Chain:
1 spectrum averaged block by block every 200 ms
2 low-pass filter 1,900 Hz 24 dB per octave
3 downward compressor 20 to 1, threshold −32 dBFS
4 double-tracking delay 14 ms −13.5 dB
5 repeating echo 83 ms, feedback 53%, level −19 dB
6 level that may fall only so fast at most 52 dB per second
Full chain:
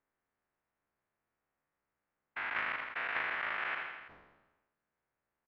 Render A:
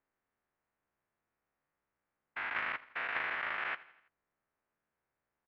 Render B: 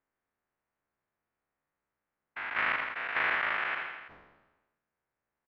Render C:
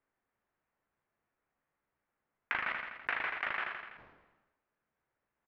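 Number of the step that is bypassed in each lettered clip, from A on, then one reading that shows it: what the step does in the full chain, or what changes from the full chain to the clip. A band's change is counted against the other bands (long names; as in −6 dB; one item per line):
6, change in momentary loudness spread −5 LU
3, average gain reduction 4.0 dB
1, change in crest factor +3.0 dB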